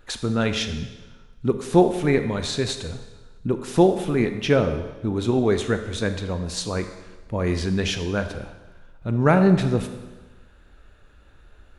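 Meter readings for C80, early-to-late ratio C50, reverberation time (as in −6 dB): 11.0 dB, 9.5 dB, 1.2 s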